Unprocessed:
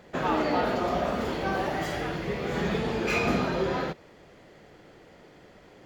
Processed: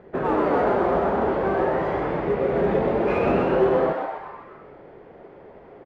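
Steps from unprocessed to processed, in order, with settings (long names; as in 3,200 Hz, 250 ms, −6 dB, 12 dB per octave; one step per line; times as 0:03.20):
low-pass filter 1,500 Hz 12 dB per octave
parametric band 400 Hz +10 dB 0.28 octaves
in parallel at −8.5 dB: hard clipping −24 dBFS, distortion −10 dB
on the sum: echo with shifted repeats 127 ms, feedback 55%, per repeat +130 Hz, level −4 dB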